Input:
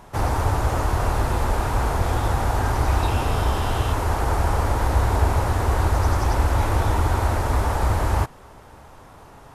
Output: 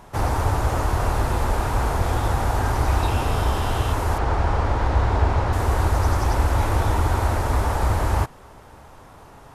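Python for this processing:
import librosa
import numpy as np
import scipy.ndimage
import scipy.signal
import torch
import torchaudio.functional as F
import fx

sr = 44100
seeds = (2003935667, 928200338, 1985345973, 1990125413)

y = fx.lowpass(x, sr, hz=4600.0, slope=12, at=(4.18, 5.53))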